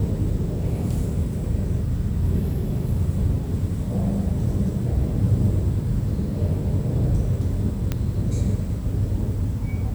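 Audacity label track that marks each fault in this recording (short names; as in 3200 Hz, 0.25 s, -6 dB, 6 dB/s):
7.920000	7.920000	pop -11 dBFS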